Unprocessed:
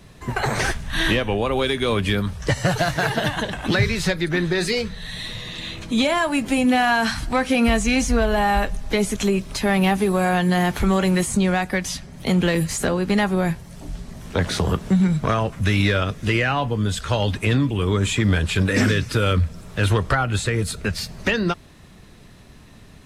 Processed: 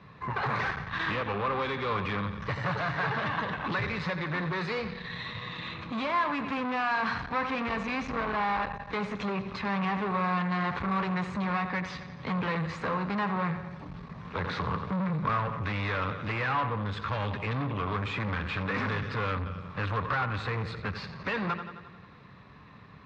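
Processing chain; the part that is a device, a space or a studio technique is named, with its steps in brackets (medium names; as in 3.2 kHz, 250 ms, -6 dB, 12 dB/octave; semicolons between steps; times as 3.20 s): analogue delay pedal into a guitar amplifier (bucket-brigade echo 88 ms, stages 4096, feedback 60%, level -14 dB; valve stage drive 26 dB, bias 0.5; cabinet simulation 110–3500 Hz, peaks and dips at 240 Hz -5 dB, 350 Hz -8 dB, 660 Hz -6 dB, 1.1 kHz +9 dB, 3.1 kHz -8 dB)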